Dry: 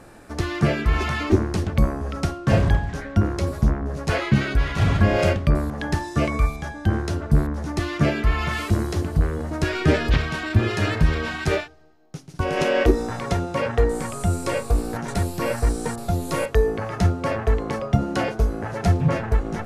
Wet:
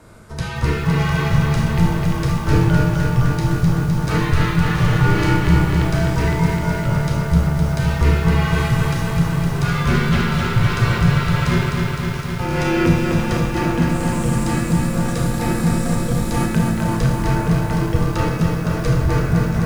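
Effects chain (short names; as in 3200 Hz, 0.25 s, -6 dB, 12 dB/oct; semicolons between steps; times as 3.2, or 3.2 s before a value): Schroeder reverb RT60 0.63 s, combs from 27 ms, DRR 2 dB; frequency shift -220 Hz; lo-fi delay 0.256 s, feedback 80%, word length 7-bit, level -4 dB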